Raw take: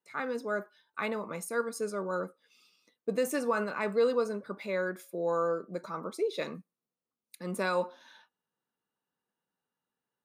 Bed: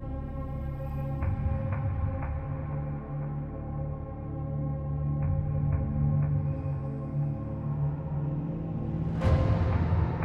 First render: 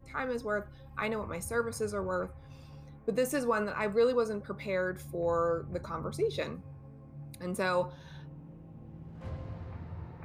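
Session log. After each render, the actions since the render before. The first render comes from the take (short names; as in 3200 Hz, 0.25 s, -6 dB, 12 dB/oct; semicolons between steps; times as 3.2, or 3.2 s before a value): add bed -16.5 dB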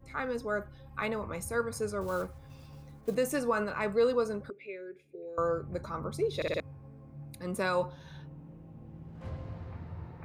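2.01–3.15 block floating point 5-bit; 4.5–5.38 double band-pass 1000 Hz, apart 2.6 oct; 6.36 stutter in place 0.06 s, 4 plays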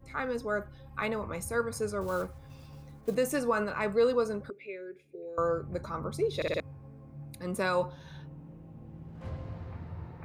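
gain +1 dB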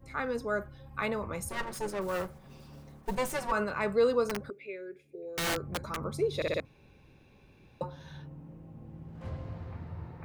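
1.49–3.52 minimum comb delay 5.3 ms; 4.24–5.97 wrapped overs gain 26 dB; 6.65–7.81 room tone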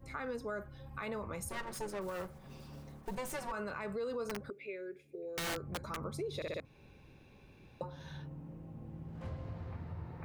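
limiter -25 dBFS, peak gain reduction 8 dB; compressor 2:1, threshold -41 dBFS, peak gain reduction 7 dB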